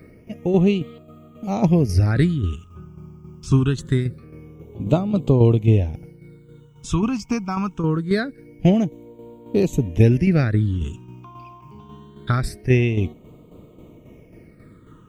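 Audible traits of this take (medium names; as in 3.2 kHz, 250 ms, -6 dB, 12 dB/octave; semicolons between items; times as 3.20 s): a quantiser's noise floor 12-bit, dither triangular; tremolo saw down 3.7 Hz, depth 55%; phasing stages 8, 0.24 Hz, lowest notch 520–1700 Hz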